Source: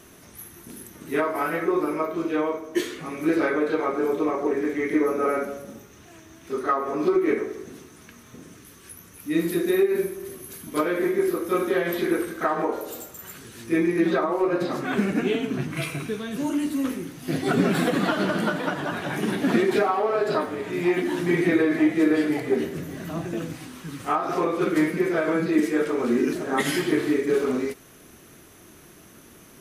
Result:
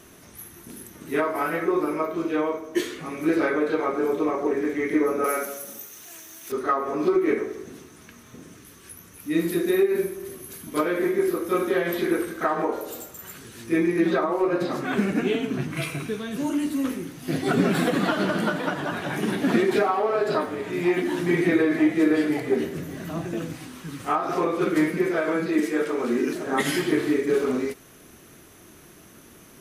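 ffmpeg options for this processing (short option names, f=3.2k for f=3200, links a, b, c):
-filter_complex "[0:a]asettb=1/sr,asplit=3[a][b][c];[a]atrim=end=5.244[d];[b]atrim=start=5.24:end=6.52,asetpts=PTS-STARTPTS,afade=t=in:d=0.004:c=qsin,afade=t=out:st=1.276:d=0.004:c=qsin,aemphasis=mode=production:type=riaa[e];[c]atrim=start=6.516[f];[d][e]acrossfade=d=0.004:c1=hsin:c2=qsin[g];[g][f]acrossfade=d=0.004:c1=qsin:c2=hsin,asettb=1/sr,asplit=3[h][i][j];[h]atrim=end=25.114[k];[i]atrim=start=25.11:end=26.46,asetpts=PTS-STARTPTS,afade=t=in:d=0.004:c=qsin,afade=t=out:st=1.346:d=0.004:c=qsin,lowshelf=f=150:g=-9.5[l];[j]atrim=start=26.456[m];[k][l]acrossfade=d=0.004:c1=hsin:c2=qsin[n];[n][m]acrossfade=d=0.004:c1=qsin:c2=hsin"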